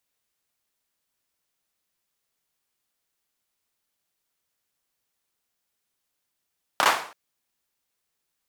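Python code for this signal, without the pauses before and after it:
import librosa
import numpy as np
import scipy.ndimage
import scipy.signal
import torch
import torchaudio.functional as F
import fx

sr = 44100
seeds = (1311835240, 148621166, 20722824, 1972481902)

y = fx.drum_clap(sr, seeds[0], length_s=0.33, bursts=3, spacing_ms=29, hz=980.0, decay_s=0.46)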